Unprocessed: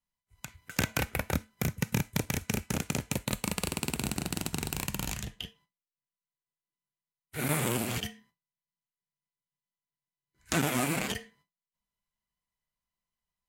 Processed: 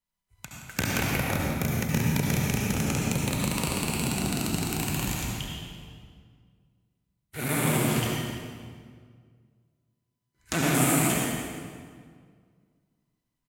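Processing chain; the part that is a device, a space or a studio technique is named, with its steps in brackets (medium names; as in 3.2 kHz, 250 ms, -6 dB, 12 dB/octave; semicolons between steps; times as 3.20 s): 10.74–11.19 s: resonant high shelf 6.3 kHz +6.5 dB, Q 1.5; feedback delay 171 ms, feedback 40%, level -13.5 dB; stairwell (reverberation RT60 1.9 s, pre-delay 64 ms, DRR -3 dB)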